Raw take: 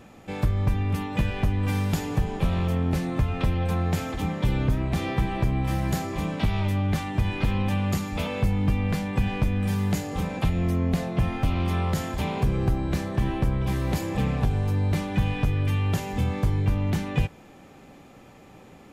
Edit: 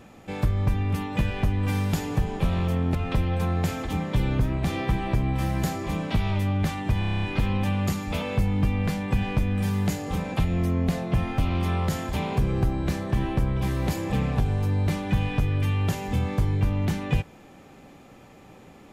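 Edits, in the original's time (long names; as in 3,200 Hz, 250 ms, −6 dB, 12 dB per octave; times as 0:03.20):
0:02.95–0:03.24: remove
0:07.28: stutter 0.03 s, 9 plays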